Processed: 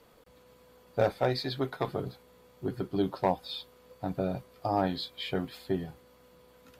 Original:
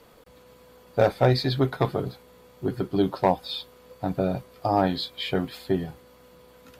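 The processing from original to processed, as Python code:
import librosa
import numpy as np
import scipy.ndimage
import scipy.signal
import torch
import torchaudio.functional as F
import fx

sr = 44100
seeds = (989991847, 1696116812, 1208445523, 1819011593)

y = fx.peak_eq(x, sr, hz=69.0, db=-9.0, octaves=2.9, at=(1.18, 1.88))
y = y * 10.0 ** (-6.0 / 20.0)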